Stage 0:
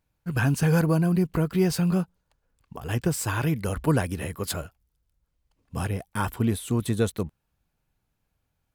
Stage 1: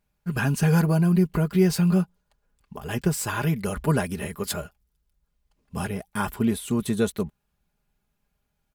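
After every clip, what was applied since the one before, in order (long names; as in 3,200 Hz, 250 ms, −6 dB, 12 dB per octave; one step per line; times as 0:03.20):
comb filter 4.9 ms, depth 56%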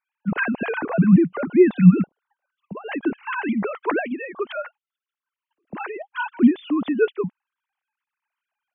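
three sine waves on the formant tracks
level +3.5 dB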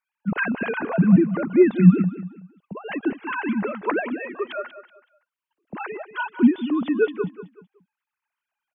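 repeating echo 188 ms, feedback 31%, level −13 dB
level −1 dB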